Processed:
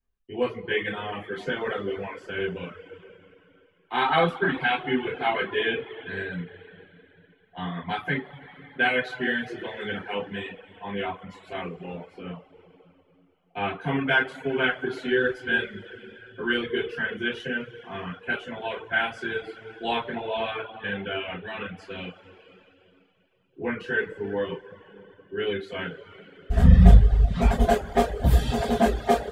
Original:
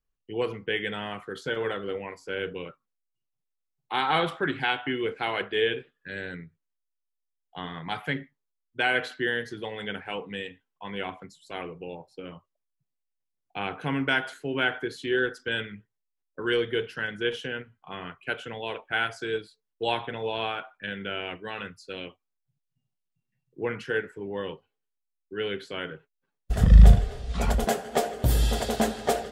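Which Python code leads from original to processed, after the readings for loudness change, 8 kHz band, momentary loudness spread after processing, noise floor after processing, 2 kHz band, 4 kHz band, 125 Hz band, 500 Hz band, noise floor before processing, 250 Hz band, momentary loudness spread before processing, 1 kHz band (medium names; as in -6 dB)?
+2.0 dB, no reading, 17 LU, -63 dBFS, +3.0 dB, -0.5 dB, +2.5 dB, +2.0 dB, -82 dBFS, +4.0 dB, 14 LU, +3.0 dB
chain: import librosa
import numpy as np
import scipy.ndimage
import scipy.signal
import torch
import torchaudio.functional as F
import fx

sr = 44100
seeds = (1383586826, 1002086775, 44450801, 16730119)

y = fx.bass_treble(x, sr, bass_db=3, treble_db=-10)
y = fx.rev_double_slope(y, sr, seeds[0], early_s=0.29, late_s=3.1, knee_db=-18, drr_db=-9.0)
y = fx.dereverb_blind(y, sr, rt60_s=0.68)
y = y * 10.0 ** (-5.5 / 20.0)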